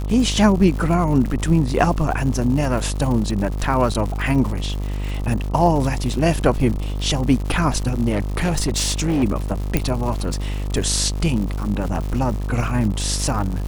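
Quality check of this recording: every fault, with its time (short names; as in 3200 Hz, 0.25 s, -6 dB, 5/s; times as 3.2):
buzz 50 Hz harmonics 26 -24 dBFS
crackle 180/s -27 dBFS
3.94–3.95 gap 7.2 ms
8.09–9.24 clipped -15.5 dBFS
9.77 pop -4 dBFS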